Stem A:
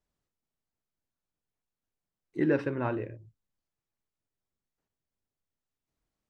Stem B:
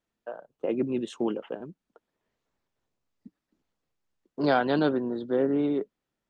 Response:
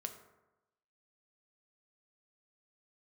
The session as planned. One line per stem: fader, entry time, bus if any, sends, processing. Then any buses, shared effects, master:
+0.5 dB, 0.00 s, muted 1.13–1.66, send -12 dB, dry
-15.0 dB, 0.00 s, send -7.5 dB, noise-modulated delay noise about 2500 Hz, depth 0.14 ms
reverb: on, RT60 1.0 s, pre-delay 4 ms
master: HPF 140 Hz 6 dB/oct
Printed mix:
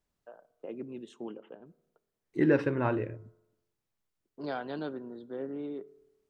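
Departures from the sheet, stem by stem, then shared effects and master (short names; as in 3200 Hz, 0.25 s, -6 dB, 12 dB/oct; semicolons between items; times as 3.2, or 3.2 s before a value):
stem B: missing noise-modulated delay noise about 2500 Hz, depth 0.14 ms; master: missing HPF 140 Hz 6 dB/oct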